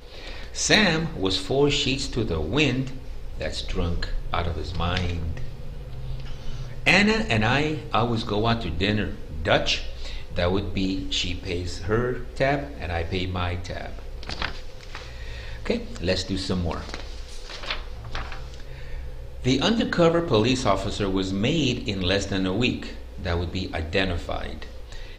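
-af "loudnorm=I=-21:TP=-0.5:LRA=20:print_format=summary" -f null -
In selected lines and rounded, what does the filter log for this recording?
Input Integrated:    -25.1 LUFS
Input True Peak:      -4.2 dBTP
Input LRA:             7.1 LU
Input Threshold:     -36.0 LUFS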